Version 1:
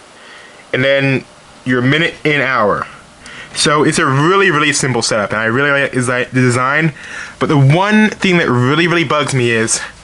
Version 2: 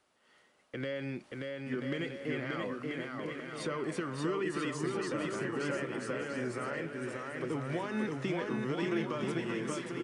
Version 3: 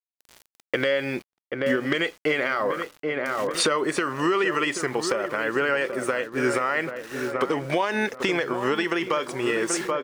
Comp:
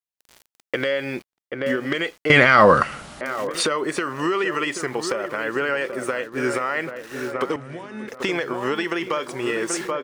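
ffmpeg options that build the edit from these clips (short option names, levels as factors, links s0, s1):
-filter_complex "[2:a]asplit=3[s0][s1][s2];[s0]atrim=end=2.302[s3];[0:a]atrim=start=2.298:end=3.212[s4];[s1]atrim=start=3.208:end=7.562[s5];[1:a]atrim=start=7.558:end=8.082[s6];[s2]atrim=start=8.078[s7];[s3][s4]acrossfade=d=0.004:c1=hsin:c2=hsin[s8];[s8][s5]acrossfade=d=0.004:c1=hsin:c2=hsin[s9];[s9][s6]acrossfade=d=0.004:c1=hsin:c2=hsin[s10];[s10][s7]acrossfade=d=0.004:c1=hsin:c2=hsin"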